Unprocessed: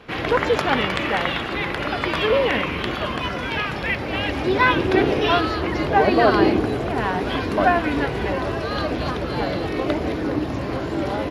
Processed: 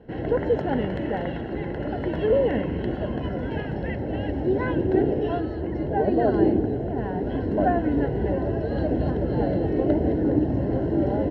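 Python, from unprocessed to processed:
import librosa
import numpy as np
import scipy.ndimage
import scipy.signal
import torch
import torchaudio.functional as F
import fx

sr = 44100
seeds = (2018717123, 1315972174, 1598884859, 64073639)

y = fx.rider(x, sr, range_db=10, speed_s=2.0)
y = np.convolve(y, np.full(37, 1.0 / 37))[:len(y)]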